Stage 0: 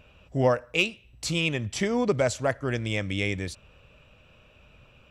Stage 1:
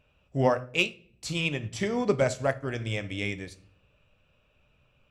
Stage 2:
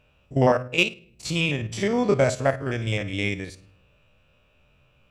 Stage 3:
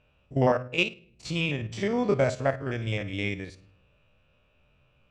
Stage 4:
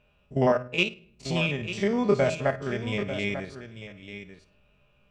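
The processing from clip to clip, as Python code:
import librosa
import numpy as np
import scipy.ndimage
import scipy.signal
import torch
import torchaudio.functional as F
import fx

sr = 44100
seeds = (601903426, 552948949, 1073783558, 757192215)

y1 = fx.room_shoebox(x, sr, seeds[0], volume_m3=110.0, walls='mixed', distance_m=0.3)
y1 = fx.upward_expand(y1, sr, threshold_db=-42.0, expansion=1.5)
y2 = fx.spec_steps(y1, sr, hold_ms=50)
y2 = F.gain(torch.from_numpy(y2), 6.0).numpy()
y3 = fx.air_absorb(y2, sr, metres=73.0)
y3 = F.gain(torch.from_numpy(y3), -3.5).numpy()
y4 = y3 + 0.42 * np.pad(y3, (int(4.9 * sr / 1000.0), 0))[:len(y3)]
y4 = y4 + 10.0 ** (-11.0 / 20.0) * np.pad(y4, (int(894 * sr / 1000.0), 0))[:len(y4)]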